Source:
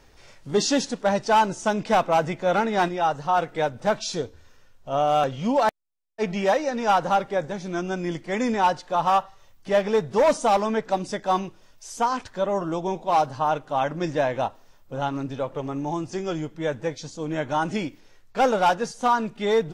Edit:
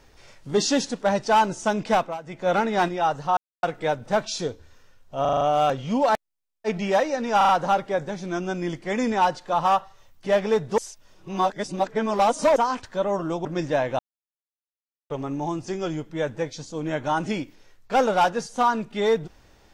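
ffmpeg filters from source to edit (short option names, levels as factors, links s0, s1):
-filter_complex "[0:a]asplit=17[s0][s1][s2][s3][s4][s5][s6][s7][s8][s9][s10][s11][s12][s13][s14][s15][s16];[s0]atrim=end=2.18,asetpts=PTS-STARTPTS,afade=t=out:st=1.93:d=0.25:silence=0.149624[s17];[s1]atrim=start=2.18:end=2.24,asetpts=PTS-STARTPTS,volume=0.15[s18];[s2]atrim=start=2.24:end=3.37,asetpts=PTS-STARTPTS,afade=t=in:d=0.25:silence=0.149624,afade=t=out:st=1.126:d=0.004:c=hsin,apad=pad_dur=0.26[s19];[s3]atrim=start=3.37:end=4.992,asetpts=PTS-STARTPTS,afade=t=in:d=0.004:c=hsin[s20];[s4]atrim=start=4.948:end=4.992[s21];[s5]atrim=start=4.948:end=4.992[s22];[s6]atrim=start=4.948:end=4.992[s23];[s7]atrim=start=4.948:end=4.992[s24];[s8]atrim=start=4.948:end=6.952[s25];[s9]atrim=start=6.908:end=6.952[s26];[s10]atrim=start=6.908:end=6.952[s27];[s11]atrim=start=6.908:end=10.202[s28];[s12]atrim=start=10.198:end=11.982,asetpts=PTS-STARTPTS,areverse[s29];[s13]atrim=start=11.978:end=12.872[s30];[s14]atrim=start=13.898:end=14.44,asetpts=PTS-STARTPTS,afade=t=out:st=0.538:d=0.004:c=hsin[s31];[s15]atrim=start=14.44:end=15.55,asetpts=PTS-STARTPTS,volume=0[s32];[s16]atrim=start=15.55,asetpts=PTS-STARTPTS,afade=t=in:d=0.004:c=hsin[s33];[s17][s18][s19][s20]concat=n=4:v=0:a=1[s34];[s34][s21]acrossfade=d=0.004:c1=hsin:c2=hsin[s35];[s35][s22]acrossfade=d=0.004:c1=hsin:c2=hsin[s36];[s36][s23]acrossfade=d=0.004:c1=hsin:c2=hsin[s37];[s37][s24]acrossfade=d=0.004:c1=hsin:c2=hsin[s38];[s38][s25]acrossfade=d=0.004:c1=hsin:c2=hsin[s39];[s39][s26]acrossfade=d=0.004:c1=hsin:c2=hsin[s40];[s40][s27]acrossfade=d=0.004:c1=hsin:c2=hsin[s41];[s41][s28]acrossfade=d=0.004:c1=hsin:c2=hsin[s42];[s42][s29]acrossfade=d=0.004:c1=hsin:c2=hsin[s43];[s43][s30]acrossfade=d=0.004:c1=hsin:c2=hsin[s44];[s31][s32][s33]concat=n=3:v=0:a=1[s45];[s44][s45]acrossfade=d=0.004:c1=hsin:c2=hsin"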